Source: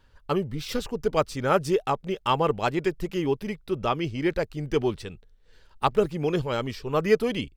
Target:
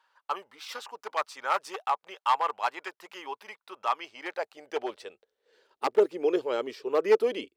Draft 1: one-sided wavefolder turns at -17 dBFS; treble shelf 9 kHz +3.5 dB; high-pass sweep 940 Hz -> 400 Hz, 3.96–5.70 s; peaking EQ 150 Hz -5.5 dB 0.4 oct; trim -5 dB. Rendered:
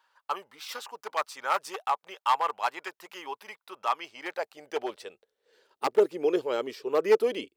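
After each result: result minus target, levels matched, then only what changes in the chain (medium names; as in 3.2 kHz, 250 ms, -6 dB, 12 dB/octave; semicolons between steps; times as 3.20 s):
125 Hz band +3.5 dB; 8 kHz band +3.0 dB
change: peaking EQ 150 Hz -13.5 dB 0.4 oct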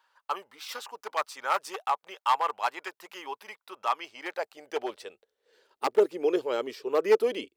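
8 kHz band +3.0 dB
change: treble shelf 9 kHz -5.5 dB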